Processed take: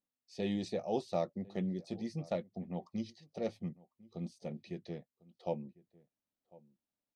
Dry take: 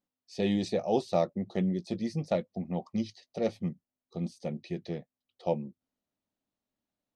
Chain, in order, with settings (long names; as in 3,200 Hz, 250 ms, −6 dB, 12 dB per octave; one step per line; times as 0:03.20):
slap from a distant wall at 180 metres, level −22 dB
level −7 dB